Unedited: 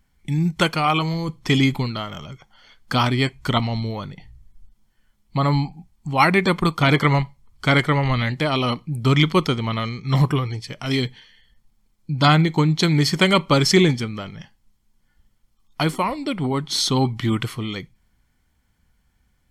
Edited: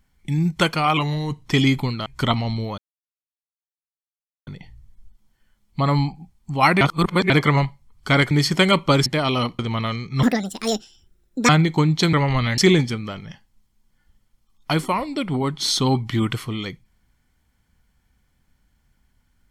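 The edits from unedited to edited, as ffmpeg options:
-filter_complex "[0:a]asplit=14[a][b][c][d][e][f][g][h][i][j][k][l][m][n];[a]atrim=end=0.974[o];[b]atrim=start=0.97:end=1.42,asetpts=PTS-STARTPTS,asetrate=40572,aresample=44100[p];[c]atrim=start=1.416:end=2.022[q];[d]atrim=start=3.318:end=4.04,asetpts=PTS-STARTPTS,afade=t=out:st=0.718:d=0.004:c=hsin,apad=pad_dur=1.69[r];[e]atrim=start=4.04:end=6.382,asetpts=PTS-STARTPTS,afade=t=in:d=0.004:c=hsin[s];[f]atrim=start=6.378:end=6.872,asetpts=PTS-STARTPTS,areverse[t];[g]atrim=start=6.868:end=7.882[u];[h]atrim=start=12.928:end=13.682[v];[i]atrim=start=8.328:end=8.862[w];[j]atrim=start=9.518:end=10.164[x];[k]atrim=start=10.16:end=12.29,asetpts=PTS-STARTPTS,asetrate=74529,aresample=44100[y];[l]atrim=start=12.286:end=12.932[z];[m]atrim=start=7.878:end=8.332[aa];[n]atrim=start=13.678[ab];[o][p]acrossfade=d=0.004:c1=hsin:c2=hsin[ac];[ac][q]acrossfade=d=0.004:c1=hsin:c2=hsin[ad];[r][s]concat=n=2:v=0:a=1[ae];[ad][ae]acrossfade=d=0.004:c1=hsin:c2=hsin[af];[af][t]acrossfade=d=0.004:c1=hsin:c2=hsin[ag];[ag][u]acrossfade=d=0.004:c1=hsin:c2=hsin[ah];[ah][v]acrossfade=d=0.004:c1=hsin:c2=hsin[ai];[ai][w]acrossfade=d=0.004:c1=hsin:c2=hsin[aj];[aj][x]acrossfade=d=0.004:c1=hsin:c2=hsin[ak];[ak][y]acrossfade=d=0.004:c1=hsin:c2=hsin[al];[al][z]acrossfade=d=0.004:c1=hsin:c2=hsin[am];[am][aa]acrossfade=d=0.004:c1=hsin:c2=hsin[an];[an][ab]acrossfade=d=0.004:c1=hsin:c2=hsin"

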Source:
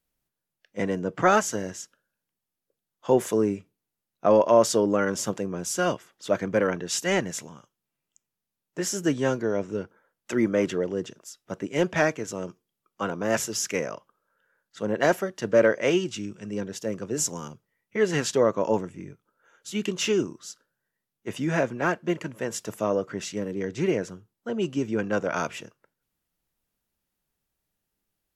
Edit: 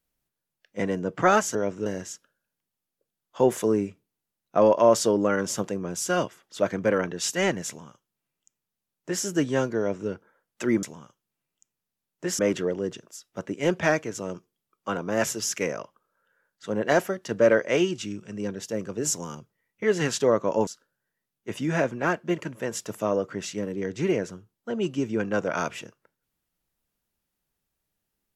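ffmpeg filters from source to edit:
-filter_complex "[0:a]asplit=6[a][b][c][d][e][f];[a]atrim=end=1.552[g];[b]atrim=start=9.468:end=9.782[h];[c]atrim=start=1.548:end=10.522[i];[d]atrim=start=7.368:end=8.932[j];[e]atrim=start=10.518:end=18.802[k];[f]atrim=start=20.458[l];[g][h]acrossfade=d=0.004:c1=hsin:c2=hsin[m];[m][i]acrossfade=d=0.004:c1=hsin:c2=hsin[n];[n][j]acrossfade=d=0.004:c1=hsin:c2=hsin[o];[o][k]acrossfade=d=0.004:c1=hsin:c2=hsin[p];[p][l]acrossfade=d=0.004:c1=hsin:c2=hsin"

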